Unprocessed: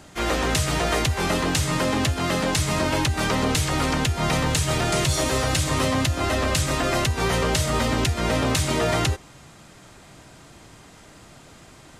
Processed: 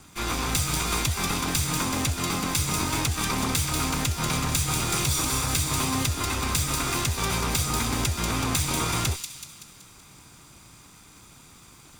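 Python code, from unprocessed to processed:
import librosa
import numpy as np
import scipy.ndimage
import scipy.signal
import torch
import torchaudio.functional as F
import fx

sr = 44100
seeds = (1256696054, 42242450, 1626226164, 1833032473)

p1 = fx.lower_of_two(x, sr, delay_ms=0.84)
p2 = fx.high_shelf(p1, sr, hz=6100.0, db=7.5)
p3 = p2 + fx.echo_wet_highpass(p2, sr, ms=189, feedback_pct=51, hz=3600.0, wet_db=-4.5, dry=0)
y = p3 * librosa.db_to_amplitude(-3.5)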